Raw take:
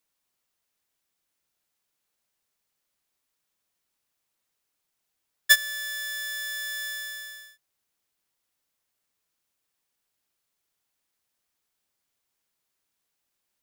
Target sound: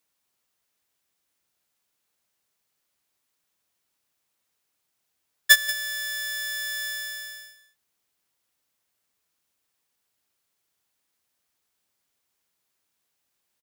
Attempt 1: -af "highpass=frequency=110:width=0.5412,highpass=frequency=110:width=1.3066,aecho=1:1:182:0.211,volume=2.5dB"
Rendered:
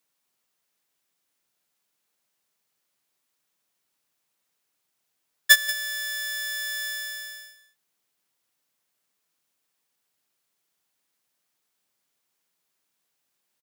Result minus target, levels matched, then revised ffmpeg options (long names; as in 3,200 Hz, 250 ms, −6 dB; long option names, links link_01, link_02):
125 Hz band −4.0 dB
-af "highpass=frequency=45:width=0.5412,highpass=frequency=45:width=1.3066,aecho=1:1:182:0.211,volume=2.5dB"